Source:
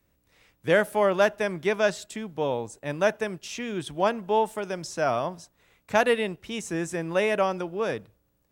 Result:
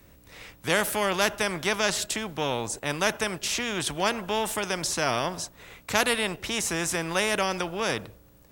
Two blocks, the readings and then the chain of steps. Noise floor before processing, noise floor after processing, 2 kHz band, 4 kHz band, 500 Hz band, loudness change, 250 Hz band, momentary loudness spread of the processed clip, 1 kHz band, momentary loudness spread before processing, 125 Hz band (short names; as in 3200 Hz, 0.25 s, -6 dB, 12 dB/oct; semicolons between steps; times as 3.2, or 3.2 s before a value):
-71 dBFS, -56 dBFS, +2.0 dB, +8.5 dB, -4.5 dB, 0.0 dB, -1.0 dB, 6 LU, -1.0 dB, 11 LU, +0.5 dB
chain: spectral compressor 2:1